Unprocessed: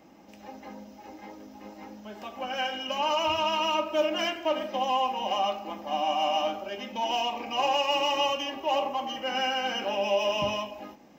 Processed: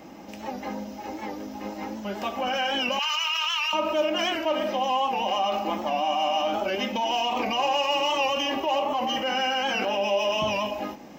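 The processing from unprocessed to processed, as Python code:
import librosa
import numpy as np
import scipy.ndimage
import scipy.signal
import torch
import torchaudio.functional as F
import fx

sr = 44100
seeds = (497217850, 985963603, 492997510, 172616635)

p1 = fx.highpass(x, sr, hz=1400.0, slope=24, at=(2.99, 3.73))
p2 = fx.over_compress(p1, sr, threshold_db=-36.0, ratio=-1.0)
p3 = p1 + F.gain(torch.from_numpy(p2), 1.0).numpy()
y = fx.record_warp(p3, sr, rpm=78.0, depth_cents=100.0)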